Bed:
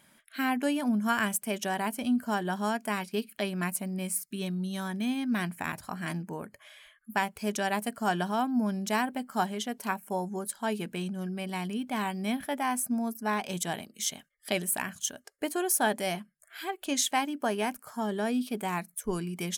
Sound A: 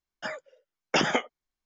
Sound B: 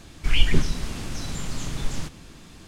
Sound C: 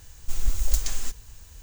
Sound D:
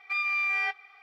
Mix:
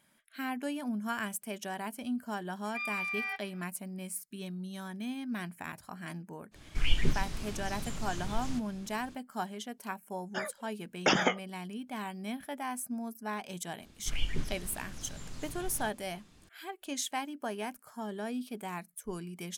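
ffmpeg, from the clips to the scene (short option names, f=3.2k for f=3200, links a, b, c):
-filter_complex "[2:a]asplit=2[a][b];[0:a]volume=-7.5dB[c];[a]flanger=delay=4.2:depth=9.3:regen=-80:speed=1.4:shape=triangular[d];[4:a]atrim=end=1.02,asetpts=PTS-STARTPTS,volume=-8dB,afade=t=in:d=0.004:c=hsin,afade=t=out:st=1.016:d=0.004:c=hsin,adelay=2650[e];[d]atrim=end=2.67,asetpts=PTS-STARTPTS,volume=-4dB,afade=t=in:d=0.05,afade=t=out:st=2.62:d=0.05,adelay=6510[f];[1:a]atrim=end=1.65,asetpts=PTS-STARTPTS,volume=-2dB,afade=t=in:d=0.004:c=hsin,afade=t=out:st=1.646:d=0.004:c=hsin,adelay=10120[g];[b]atrim=end=2.67,asetpts=PTS-STARTPTS,volume=-14dB,afade=t=in:d=0.004:c=hsin,afade=t=out:st=2.666:d=0.004:c=hsin,adelay=13820[h];[c][e][f][g][h]amix=inputs=5:normalize=0"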